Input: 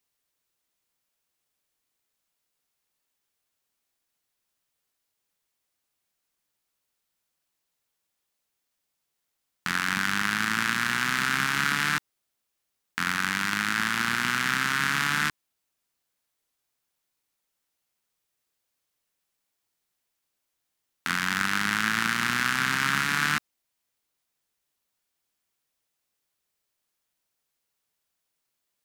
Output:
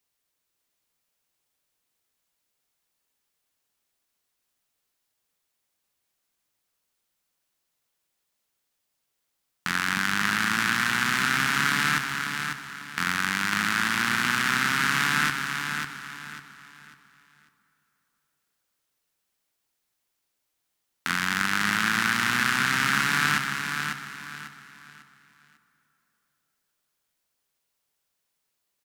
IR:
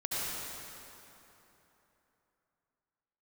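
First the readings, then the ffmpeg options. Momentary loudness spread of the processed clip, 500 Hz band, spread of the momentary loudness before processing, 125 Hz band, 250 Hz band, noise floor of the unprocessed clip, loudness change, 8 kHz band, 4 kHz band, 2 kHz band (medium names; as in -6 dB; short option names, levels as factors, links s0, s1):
13 LU, +2.0 dB, 6 LU, +2.0 dB, +2.0 dB, -81 dBFS, +1.0 dB, +2.0 dB, +2.0 dB, +2.0 dB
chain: -filter_complex "[0:a]aecho=1:1:547|1094|1641|2188:0.501|0.155|0.0482|0.0149,asplit=2[s0][s1];[1:a]atrim=start_sample=2205[s2];[s1][s2]afir=irnorm=-1:irlink=0,volume=0.119[s3];[s0][s3]amix=inputs=2:normalize=0"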